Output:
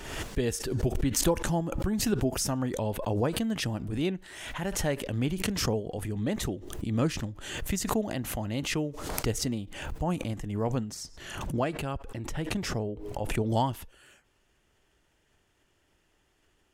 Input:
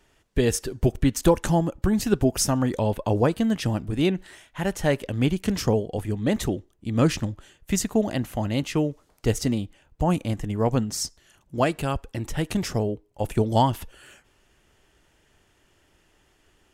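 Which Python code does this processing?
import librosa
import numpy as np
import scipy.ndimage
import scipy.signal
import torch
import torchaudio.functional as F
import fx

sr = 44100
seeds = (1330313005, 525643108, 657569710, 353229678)

y = fx.high_shelf(x, sr, hz=4900.0, db=-8.0, at=(10.94, 13.54))
y = fx.pre_swell(y, sr, db_per_s=48.0)
y = y * librosa.db_to_amplitude(-7.5)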